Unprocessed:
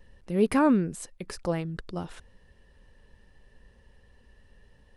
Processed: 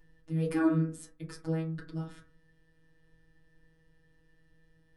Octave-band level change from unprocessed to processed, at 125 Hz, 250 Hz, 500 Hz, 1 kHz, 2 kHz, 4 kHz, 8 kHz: +1.5 dB, -5.0 dB, -8.0 dB, -11.5 dB, -6.5 dB, -9.0 dB, -9.0 dB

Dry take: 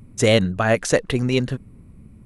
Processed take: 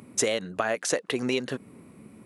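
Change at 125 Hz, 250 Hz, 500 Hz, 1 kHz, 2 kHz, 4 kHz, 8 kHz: -18.5 dB, -9.5 dB, -8.5 dB, -6.5 dB, -7.0 dB, -6.5 dB, -0.5 dB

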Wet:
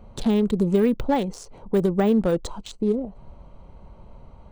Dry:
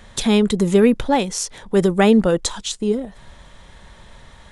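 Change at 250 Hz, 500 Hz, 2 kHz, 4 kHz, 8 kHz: -4.5 dB, -5.0 dB, -11.0 dB, -13.0 dB, -17.0 dB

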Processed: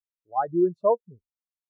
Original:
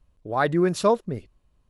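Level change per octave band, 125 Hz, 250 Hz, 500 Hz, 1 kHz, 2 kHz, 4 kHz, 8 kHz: -11.5 dB, -2.5 dB, -1.5 dB, -1.5 dB, under -15 dB, under -40 dB, under -40 dB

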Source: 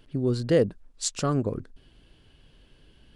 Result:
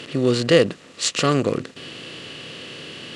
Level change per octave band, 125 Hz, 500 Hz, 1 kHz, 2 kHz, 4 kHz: +3.0 dB, +6.5 dB, +9.0 dB, +14.5 dB, +13.5 dB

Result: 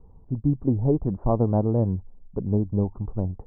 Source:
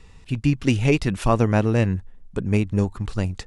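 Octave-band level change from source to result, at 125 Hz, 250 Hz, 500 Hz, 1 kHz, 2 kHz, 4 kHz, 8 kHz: -2.5 dB, -2.5 dB, -2.5 dB, -5.5 dB, under -35 dB, under -40 dB, under -40 dB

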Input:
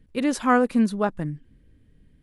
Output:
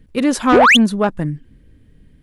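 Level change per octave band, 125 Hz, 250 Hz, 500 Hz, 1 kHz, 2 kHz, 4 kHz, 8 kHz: +7.5 dB, +6.5 dB, +9.0 dB, +10.0 dB, +14.5 dB, +22.0 dB, +10.5 dB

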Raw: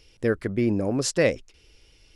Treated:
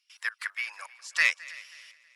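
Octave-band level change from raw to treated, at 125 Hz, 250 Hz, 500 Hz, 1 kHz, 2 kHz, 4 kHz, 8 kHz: under -40 dB, under -40 dB, -31.5 dB, -4.5 dB, +6.5 dB, -1.0 dB, -9.5 dB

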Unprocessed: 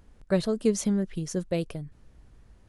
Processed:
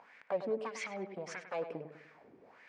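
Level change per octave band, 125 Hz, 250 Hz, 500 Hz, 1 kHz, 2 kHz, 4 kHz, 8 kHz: -21.5 dB, -19.5 dB, -8.0 dB, +1.0 dB, -1.0 dB, -11.5 dB, -16.5 dB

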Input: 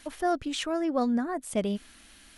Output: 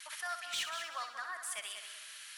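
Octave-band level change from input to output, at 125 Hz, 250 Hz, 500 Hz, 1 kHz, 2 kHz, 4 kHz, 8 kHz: no reading, under -40 dB, -23.0 dB, -9.0 dB, +0.5 dB, -1.0 dB, +0.5 dB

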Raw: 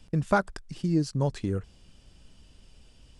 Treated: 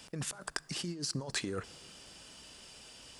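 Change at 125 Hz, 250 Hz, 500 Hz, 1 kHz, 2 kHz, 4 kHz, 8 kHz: -13.5 dB, -13.0 dB, -13.0 dB, -16.0 dB, -5.5 dB, +6.5 dB, +8.0 dB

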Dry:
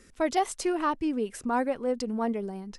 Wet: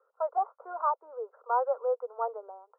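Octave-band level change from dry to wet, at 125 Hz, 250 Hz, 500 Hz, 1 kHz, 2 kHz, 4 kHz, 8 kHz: no reading, under -30 dB, -2.0 dB, +0.5 dB, -11.0 dB, under -40 dB, under -40 dB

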